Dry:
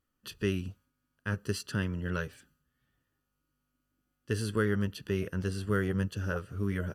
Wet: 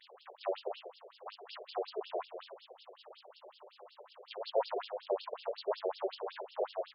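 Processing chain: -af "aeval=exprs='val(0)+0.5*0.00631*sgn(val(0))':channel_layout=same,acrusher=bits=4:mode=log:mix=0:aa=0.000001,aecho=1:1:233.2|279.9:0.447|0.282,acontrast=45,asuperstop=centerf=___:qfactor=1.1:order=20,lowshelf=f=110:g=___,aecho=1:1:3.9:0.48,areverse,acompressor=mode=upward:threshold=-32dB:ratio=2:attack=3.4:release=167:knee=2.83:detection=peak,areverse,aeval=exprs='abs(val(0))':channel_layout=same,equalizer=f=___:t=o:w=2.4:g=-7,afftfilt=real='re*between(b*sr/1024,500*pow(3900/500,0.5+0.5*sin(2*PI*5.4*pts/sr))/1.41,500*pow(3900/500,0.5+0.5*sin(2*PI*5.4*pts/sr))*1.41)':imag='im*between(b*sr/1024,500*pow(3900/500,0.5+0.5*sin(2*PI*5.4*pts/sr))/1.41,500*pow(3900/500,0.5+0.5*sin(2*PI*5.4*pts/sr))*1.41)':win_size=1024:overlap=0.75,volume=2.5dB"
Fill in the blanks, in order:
1800, 6, 3.1k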